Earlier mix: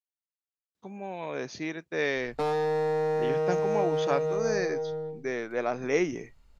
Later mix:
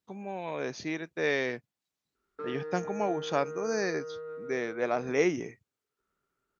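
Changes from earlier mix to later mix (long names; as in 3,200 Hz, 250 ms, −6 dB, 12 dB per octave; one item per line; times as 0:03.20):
speech: entry −0.75 s
background: add pair of resonant band-passes 720 Hz, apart 1.8 octaves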